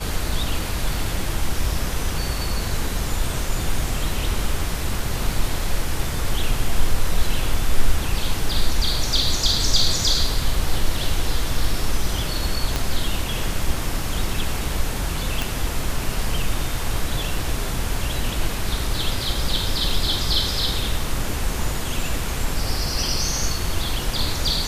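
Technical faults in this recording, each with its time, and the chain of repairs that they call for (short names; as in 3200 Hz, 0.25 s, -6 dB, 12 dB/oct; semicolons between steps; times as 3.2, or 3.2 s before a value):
12.76 pop -7 dBFS
15.42 pop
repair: de-click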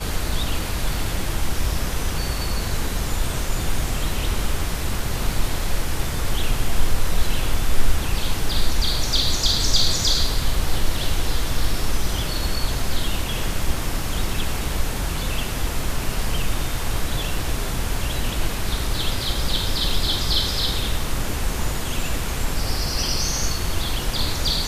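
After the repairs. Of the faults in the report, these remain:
12.76 pop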